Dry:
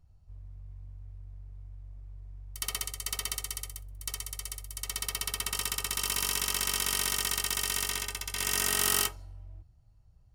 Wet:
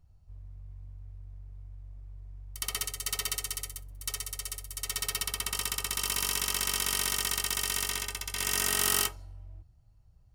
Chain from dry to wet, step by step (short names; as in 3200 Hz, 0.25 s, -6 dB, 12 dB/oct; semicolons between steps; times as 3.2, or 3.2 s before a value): 2.75–5.23 comb 7 ms, depth 73%